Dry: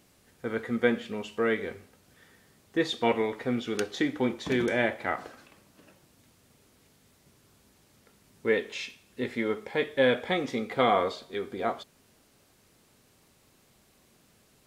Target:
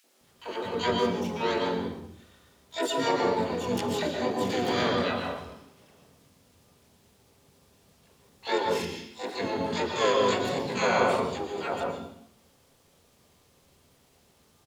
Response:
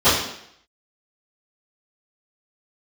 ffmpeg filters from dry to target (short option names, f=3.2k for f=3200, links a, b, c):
-filter_complex "[0:a]asplit=4[a][b][c][d];[b]asetrate=35002,aresample=44100,atempo=1.25992,volume=-1dB[e];[c]asetrate=55563,aresample=44100,atempo=0.793701,volume=-8dB[f];[d]asetrate=88200,aresample=44100,atempo=0.5,volume=-1dB[g];[a][e][f][g]amix=inputs=4:normalize=0,acrossover=split=280|1400[h][i][j];[i]adelay=40[k];[h]adelay=210[l];[l][k][j]amix=inputs=3:normalize=0,asplit=2[m][n];[1:a]atrim=start_sample=2205,adelay=106[o];[n][o]afir=irnorm=-1:irlink=0,volume=-25dB[p];[m][p]amix=inputs=2:normalize=0,volume=-5dB"